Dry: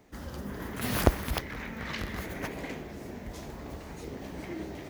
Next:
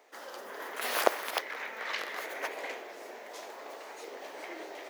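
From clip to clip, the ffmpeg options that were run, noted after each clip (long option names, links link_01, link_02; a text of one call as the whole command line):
ffmpeg -i in.wav -af "highpass=frequency=470:width=0.5412,highpass=frequency=470:width=1.3066,highshelf=frequency=6600:gain=-5,volume=3dB" out.wav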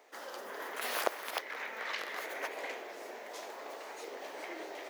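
ffmpeg -i in.wav -af "acompressor=threshold=-39dB:ratio=1.5" out.wav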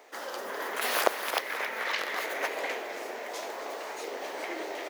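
ffmpeg -i in.wav -af "aecho=1:1:267|534|801|1068|1335|1602:0.237|0.135|0.077|0.0439|0.025|0.0143,volume=7dB" out.wav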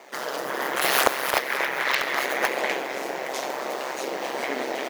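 ffmpeg -i in.wav -filter_complex "[0:a]asplit=2[link_01][link_02];[link_02]aeval=exprs='(mod(7.94*val(0)+1,2)-1)/7.94':channel_layout=same,volume=-5dB[link_03];[link_01][link_03]amix=inputs=2:normalize=0,aeval=exprs='val(0)*sin(2*PI*67*n/s)':channel_layout=same,volume=6.5dB" out.wav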